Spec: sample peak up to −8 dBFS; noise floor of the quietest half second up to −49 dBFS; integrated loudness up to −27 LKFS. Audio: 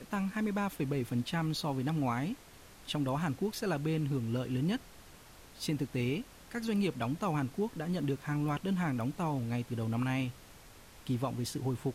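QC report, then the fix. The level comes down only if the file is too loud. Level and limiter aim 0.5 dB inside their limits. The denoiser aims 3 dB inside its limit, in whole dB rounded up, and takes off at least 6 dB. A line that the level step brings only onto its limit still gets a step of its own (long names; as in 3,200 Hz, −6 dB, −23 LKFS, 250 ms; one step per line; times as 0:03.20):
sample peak −21.5 dBFS: in spec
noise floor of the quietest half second −54 dBFS: in spec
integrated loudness −34.5 LKFS: in spec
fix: no processing needed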